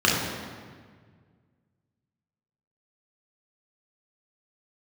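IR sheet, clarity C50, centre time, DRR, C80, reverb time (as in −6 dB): 1.0 dB, 83 ms, −4.5 dB, 3.0 dB, 1.7 s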